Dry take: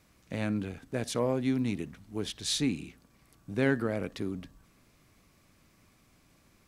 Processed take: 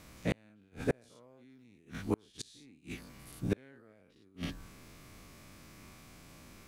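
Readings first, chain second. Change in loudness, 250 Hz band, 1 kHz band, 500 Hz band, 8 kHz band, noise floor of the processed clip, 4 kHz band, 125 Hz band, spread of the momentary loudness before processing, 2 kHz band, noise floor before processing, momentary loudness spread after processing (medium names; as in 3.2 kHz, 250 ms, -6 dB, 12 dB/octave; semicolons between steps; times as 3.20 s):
-7.5 dB, -8.5 dB, -7.5 dB, -7.5 dB, -12.0 dB, -64 dBFS, -13.0 dB, -6.0 dB, 11 LU, -8.0 dB, -65 dBFS, 21 LU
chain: every event in the spectrogram widened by 120 ms; inverted gate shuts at -22 dBFS, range -37 dB; trim +4.5 dB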